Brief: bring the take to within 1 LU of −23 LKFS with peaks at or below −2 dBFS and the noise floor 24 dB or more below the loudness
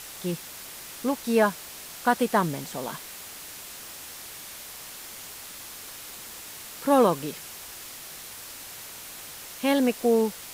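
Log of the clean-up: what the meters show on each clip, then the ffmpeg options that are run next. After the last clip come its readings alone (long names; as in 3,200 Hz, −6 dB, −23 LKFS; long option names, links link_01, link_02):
background noise floor −42 dBFS; target noise floor −53 dBFS; integrated loudness −29.0 LKFS; sample peak −8.5 dBFS; target loudness −23.0 LKFS
→ -af "afftdn=noise_reduction=11:noise_floor=-42"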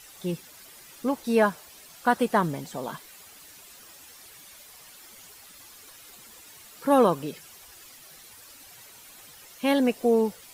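background noise floor −50 dBFS; integrated loudness −25.5 LKFS; sample peak −9.0 dBFS; target loudness −23.0 LKFS
→ -af "volume=2.5dB"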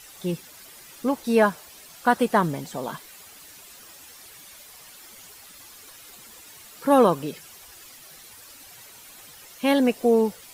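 integrated loudness −23.0 LKFS; sample peak −6.5 dBFS; background noise floor −47 dBFS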